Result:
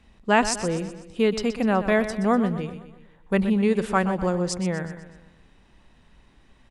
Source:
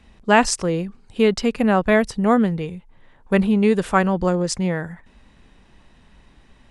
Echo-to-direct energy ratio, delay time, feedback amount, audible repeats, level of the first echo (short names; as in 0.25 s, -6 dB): -11.0 dB, 0.124 s, 50%, 4, -12.0 dB